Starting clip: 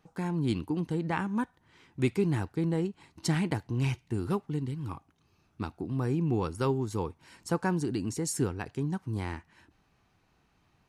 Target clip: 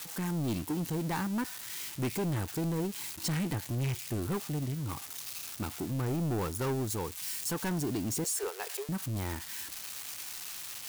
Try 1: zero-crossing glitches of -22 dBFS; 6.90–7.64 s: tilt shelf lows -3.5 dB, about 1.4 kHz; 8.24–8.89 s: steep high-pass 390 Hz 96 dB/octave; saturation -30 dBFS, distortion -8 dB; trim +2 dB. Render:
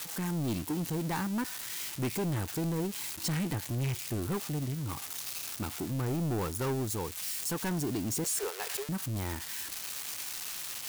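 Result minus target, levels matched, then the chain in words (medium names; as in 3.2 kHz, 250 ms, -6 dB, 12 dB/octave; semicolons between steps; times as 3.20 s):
zero-crossing glitches: distortion +6 dB
zero-crossing glitches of -28.5 dBFS; 6.90–7.64 s: tilt shelf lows -3.5 dB, about 1.4 kHz; 8.24–8.89 s: steep high-pass 390 Hz 96 dB/octave; saturation -30 dBFS, distortion -10 dB; trim +2 dB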